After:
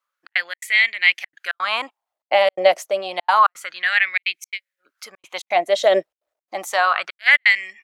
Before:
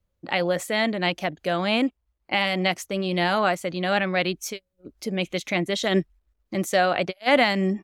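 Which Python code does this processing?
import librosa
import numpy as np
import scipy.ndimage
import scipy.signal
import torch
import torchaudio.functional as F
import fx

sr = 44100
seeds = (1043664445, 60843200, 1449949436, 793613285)

y = fx.filter_lfo_highpass(x, sr, shape='sine', hz=0.29, low_hz=570.0, high_hz=2200.0, q=5.7)
y = fx.step_gate(y, sr, bpm=169, pattern='xxx.xx.xxxx', floor_db=-60.0, edge_ms=4.5)
y = F.gain(torch.from_numpy(y), 1.0).numpy()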